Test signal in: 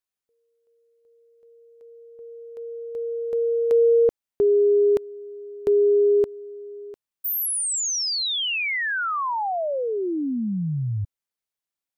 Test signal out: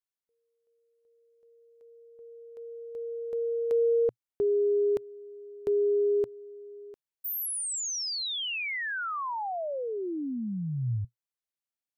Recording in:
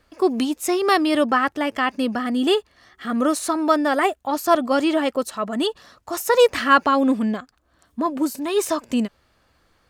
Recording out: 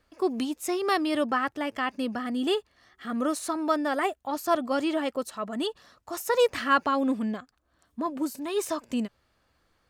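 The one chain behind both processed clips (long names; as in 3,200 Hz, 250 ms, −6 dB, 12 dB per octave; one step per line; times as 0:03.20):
dynamic equaliser 120 Hz, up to +5 dB, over −48 dBFS, Q 4.2
level −7.5 dB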